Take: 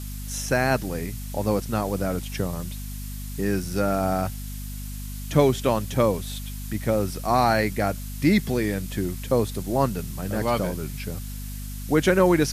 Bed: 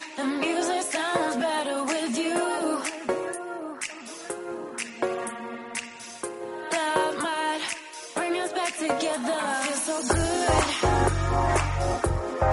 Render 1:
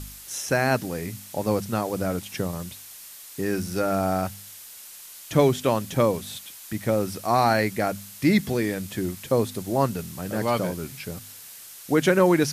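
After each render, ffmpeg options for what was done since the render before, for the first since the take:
-af "bandreject=f=50:t=h:w=4,bandreject=f=100:t=h:w=4,bandreject=f=150:t=h:w=4,bandreject=f=200:t=h:w=4,bandreject=f=250:t=h:w=4"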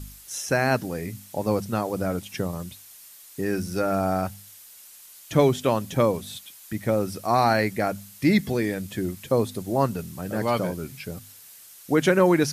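-af "afftdn=nr=6:nf=-44"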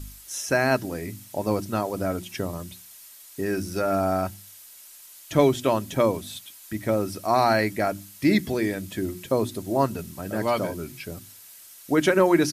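-af "bandreject=f=60:t=h:w=6,bandreject=f=120:t=h:w=6,bandreject=f=180:t=h:w=6,bandreject=f=240:t=h:w=6,bandreject=f=300:t=h:w=6,bandreject=f=360:t=h:w=6,aecho=1:1:3.1:0.3"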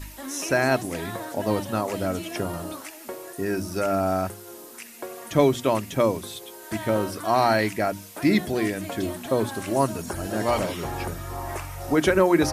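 -filter_complex "[1:a]volume=-9.5dB[a];[0:a][a]amix=inputs=2:normalize=0"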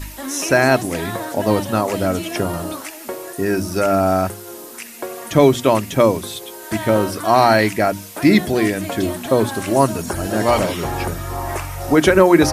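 -af "volume=7.5dB,alimiter=limit=-1dB:level=0:latency=1"

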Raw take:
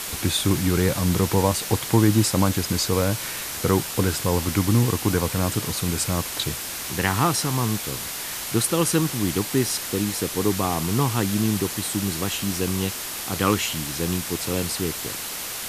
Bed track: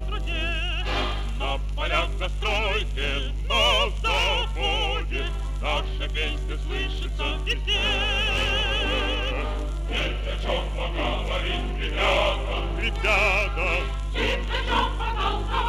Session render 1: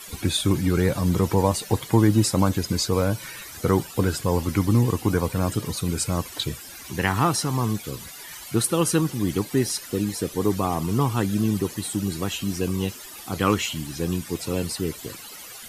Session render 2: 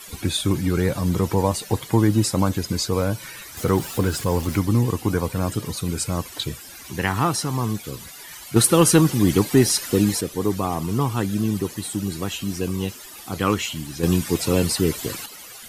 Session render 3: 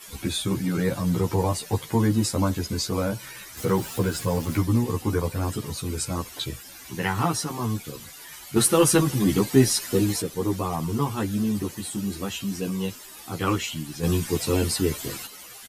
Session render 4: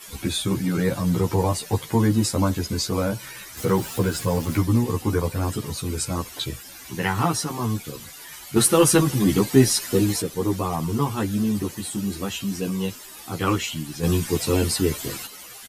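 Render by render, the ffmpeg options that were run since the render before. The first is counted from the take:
-af "afftdn=nr=15:nf=-32"
-filter_complex "[0:a]asettb=1/sr,asplit=3[a][b][c];[a]atrim=end=3.574[d];[b]atrim=start=3.57:end=4.6,asetpts=PTS-STARTPTS,afade=t=in:d=0.004:c=qsin,afade=t=out:st=1.026:d=0.004:c=qsin,aeval=exprs='val(0)+0.5*0.0237*sgn(val(0))':c=same[e];[c]atrim=start=4.596[f];[d][e]acrossfade=d=0.004:c1=hsin:c2=qsin[g];[g][f]acrossfade=d=0.004:c1=qsin:c2=hsin,asettb=1/sr,asplit=3[h][i][j];[h]atrim=end=8.564[k];[i]atrim=start=8.56:end=10.21,asetpts=PTS-STARTPTS,afade=t=in:d=0.004:c=qsin,afade=t=out:st=1.646:d=0.004:c=qsin,acontrast=84[l];[j]atrim=start=10.206[m];[k][l]acrossfade=d=0.004:c1=hsin:c2=qsin[n];[n][m]acrossfade=d=0.004:c1=qsin:c2=hsin,asettb=1/sr,asplit=3[o][p][q];[o]atrim=end=14.034[r];[p]atrim=start=14.03:end=15.26,asetpts=PTS-STARTPTS,afade=t=in:d=0.004:c=qsin,afade=t=out:st=1.226:d=0.004:c=qsin,acontrast=82[s];[q]atrim=start=15.256[t];[r][s]acrossfade=d=0.004:c1=hsin:c2=qsin[u];[u][t]acrossfade=d=0.004:c1=qsin:c2=hsin"
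-filter_complex "[0:a]asplit=2[a][b];[b]adelay=11.9,afreqshift=-0.33[c];[a][c]amix=inputs=2:normalize=1"
-af "volume=2dB"

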